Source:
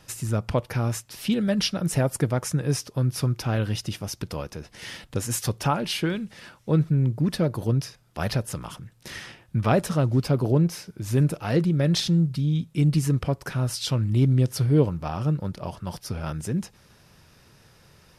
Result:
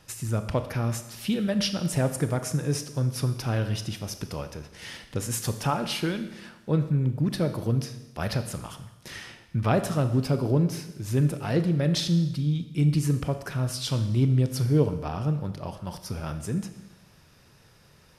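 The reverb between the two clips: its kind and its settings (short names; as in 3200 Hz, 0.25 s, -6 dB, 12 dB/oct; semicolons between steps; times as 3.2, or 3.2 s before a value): Schroeder reverb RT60 1 s, combs from 27 ms, DRR 9 dB; gain -2.5 dB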